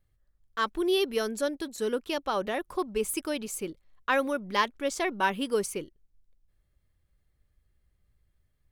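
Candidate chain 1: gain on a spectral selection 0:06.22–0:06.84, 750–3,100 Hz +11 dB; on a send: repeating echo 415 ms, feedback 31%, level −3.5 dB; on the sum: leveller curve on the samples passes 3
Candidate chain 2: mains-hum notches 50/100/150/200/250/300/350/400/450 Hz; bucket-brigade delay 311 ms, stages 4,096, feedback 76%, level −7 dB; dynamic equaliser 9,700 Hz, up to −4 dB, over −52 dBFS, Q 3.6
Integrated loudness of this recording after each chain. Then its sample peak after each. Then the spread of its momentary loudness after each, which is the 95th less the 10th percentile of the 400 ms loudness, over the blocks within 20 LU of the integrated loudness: −19.5, −29.5 LKFS; −10.0, −9.5 dBFS; 6, 16 LU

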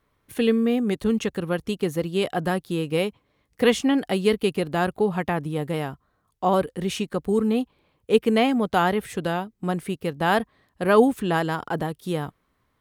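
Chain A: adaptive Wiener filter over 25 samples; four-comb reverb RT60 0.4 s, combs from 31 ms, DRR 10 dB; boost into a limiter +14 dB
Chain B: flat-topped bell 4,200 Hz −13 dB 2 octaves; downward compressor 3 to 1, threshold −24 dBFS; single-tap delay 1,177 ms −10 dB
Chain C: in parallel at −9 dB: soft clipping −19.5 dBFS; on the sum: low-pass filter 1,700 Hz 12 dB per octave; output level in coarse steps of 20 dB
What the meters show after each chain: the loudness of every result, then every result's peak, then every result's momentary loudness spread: −12.5, −29.0, −25.5 LKFS; −1.0, −13.0, −10.5 dBFS; 7, 6, 21 LU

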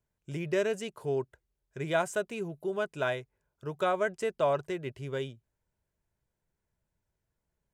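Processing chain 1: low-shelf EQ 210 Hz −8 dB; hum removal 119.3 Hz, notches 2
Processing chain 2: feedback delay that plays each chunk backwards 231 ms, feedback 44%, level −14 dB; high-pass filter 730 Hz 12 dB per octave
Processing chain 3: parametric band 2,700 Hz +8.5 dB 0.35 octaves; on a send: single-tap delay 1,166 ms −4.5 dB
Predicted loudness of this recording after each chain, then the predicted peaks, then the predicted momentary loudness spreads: −33.5, −37.0, −32.0 LKFS; −15.5, −16.0, −14.5 dBFS; 13, 16, 12 LU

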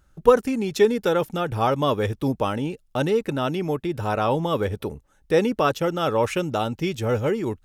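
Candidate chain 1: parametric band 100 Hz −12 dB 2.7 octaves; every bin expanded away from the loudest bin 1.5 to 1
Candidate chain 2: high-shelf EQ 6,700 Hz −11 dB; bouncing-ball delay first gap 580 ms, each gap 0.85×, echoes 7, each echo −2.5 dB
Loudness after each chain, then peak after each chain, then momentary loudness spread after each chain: −28.5, −20.5 LKFS; −3.5, −2.5 dBFS; 14, 3 LU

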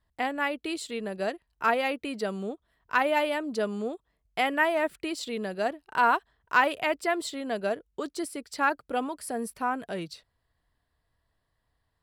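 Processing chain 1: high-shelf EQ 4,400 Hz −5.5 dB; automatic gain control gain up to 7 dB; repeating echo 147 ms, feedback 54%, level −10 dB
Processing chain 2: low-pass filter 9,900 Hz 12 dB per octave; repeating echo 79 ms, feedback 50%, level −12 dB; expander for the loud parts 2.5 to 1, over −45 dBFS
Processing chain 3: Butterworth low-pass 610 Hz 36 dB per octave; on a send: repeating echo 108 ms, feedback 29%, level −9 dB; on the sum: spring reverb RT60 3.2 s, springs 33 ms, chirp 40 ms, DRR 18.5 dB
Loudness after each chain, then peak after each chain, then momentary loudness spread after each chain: −22.5, −34.5, −34.5 LKFS; −3.5, −10.0, −19.5 dBFS; 11, 22, 7 LU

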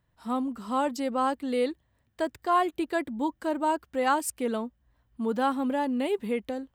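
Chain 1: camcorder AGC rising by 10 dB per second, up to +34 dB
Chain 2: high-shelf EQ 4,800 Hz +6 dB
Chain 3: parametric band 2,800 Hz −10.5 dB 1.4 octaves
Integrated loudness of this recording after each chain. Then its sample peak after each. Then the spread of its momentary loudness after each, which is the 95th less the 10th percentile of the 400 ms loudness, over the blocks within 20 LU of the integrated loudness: −28.5, −28.5, −30.0 LKFS; −13.5, −13.5, −15.0 dBFS; 6, 8, 6 LU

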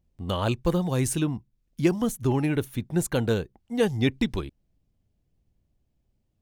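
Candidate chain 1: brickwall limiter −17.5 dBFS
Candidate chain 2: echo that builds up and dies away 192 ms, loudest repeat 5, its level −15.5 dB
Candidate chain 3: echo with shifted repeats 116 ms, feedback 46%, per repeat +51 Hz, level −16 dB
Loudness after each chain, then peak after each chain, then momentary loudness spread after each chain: −29.5, −27.0, −26.5 LKFS; −17.5, −8.5, −9.0 dBFS; 6, 11, 8 LU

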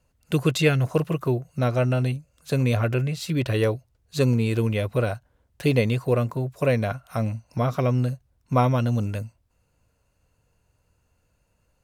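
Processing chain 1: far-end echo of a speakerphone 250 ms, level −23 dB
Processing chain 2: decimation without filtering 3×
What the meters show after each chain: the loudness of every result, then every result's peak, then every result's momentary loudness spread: −24.5, −24.5 LKFS; −6.0, −6.0 dBFS; 8, 8 LU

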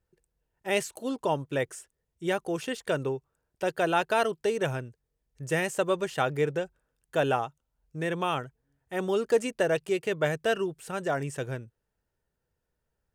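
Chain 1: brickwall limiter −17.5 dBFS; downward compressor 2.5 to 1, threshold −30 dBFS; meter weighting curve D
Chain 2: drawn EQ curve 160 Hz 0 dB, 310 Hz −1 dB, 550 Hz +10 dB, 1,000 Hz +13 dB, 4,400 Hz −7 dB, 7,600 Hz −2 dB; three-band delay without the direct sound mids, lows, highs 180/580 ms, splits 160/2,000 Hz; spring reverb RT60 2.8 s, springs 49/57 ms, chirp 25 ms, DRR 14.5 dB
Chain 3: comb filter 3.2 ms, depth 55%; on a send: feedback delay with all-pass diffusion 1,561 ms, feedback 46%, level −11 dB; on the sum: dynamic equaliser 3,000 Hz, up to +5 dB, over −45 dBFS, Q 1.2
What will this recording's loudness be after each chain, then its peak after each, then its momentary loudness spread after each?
−32.0, −22.0, −28.5 LKFS; −12.5, −3.0, −10.0 dBFS; 10, 17, 15 LU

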